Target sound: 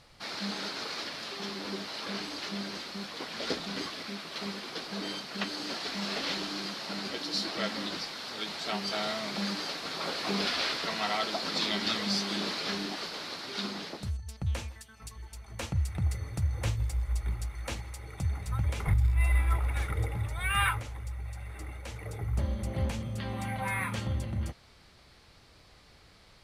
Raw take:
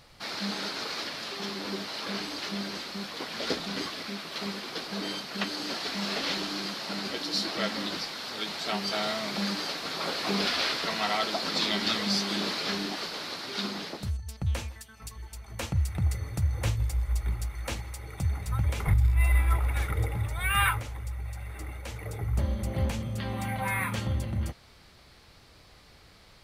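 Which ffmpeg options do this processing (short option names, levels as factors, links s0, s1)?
-af "lowpass=12000,volume=0.75"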